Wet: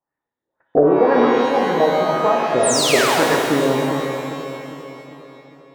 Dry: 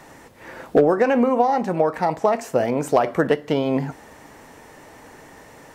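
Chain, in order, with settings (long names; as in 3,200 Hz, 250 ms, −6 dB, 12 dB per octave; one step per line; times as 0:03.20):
noise gate −32 dBFS, range −42 dB
auto-filter low-pass sine 1.9 Hz 330–1,800 Hz
sound drawn into the spectrogram fall, 0:02.63–0:03.27, 430–10,000 Hz −19 dBFS
echo with a time of its own for lows and highs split 730 Hz, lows 401 ms, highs 133 ms, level −8 dB
reverb with rising layers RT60 1.9 s, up +12 semitones, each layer −8 dB, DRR 0.5 dB
level −3.5 dB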